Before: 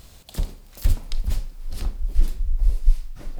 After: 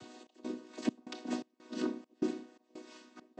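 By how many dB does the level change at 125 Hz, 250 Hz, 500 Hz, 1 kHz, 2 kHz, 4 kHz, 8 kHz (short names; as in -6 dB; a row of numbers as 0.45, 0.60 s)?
-28.5 dB, +7.0 dB, +5.5 dB, 0.0 dB, -2.0 dB, -7.5 dB, n/a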